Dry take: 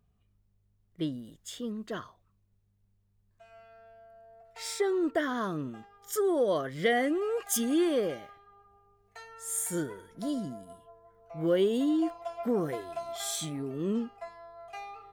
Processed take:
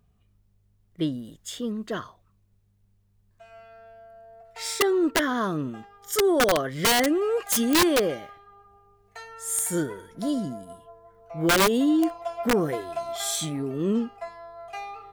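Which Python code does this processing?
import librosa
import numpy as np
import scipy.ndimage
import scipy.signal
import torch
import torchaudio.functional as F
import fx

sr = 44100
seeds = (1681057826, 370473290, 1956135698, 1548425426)

y = (np.mod(10.0 ** (20.5 / 20.0) * x + 1.0, 2.0) - 1.0) / 10.0 ** (20.5 / 20.0)
y = y * 10.0 ** (6.0 / 20.0)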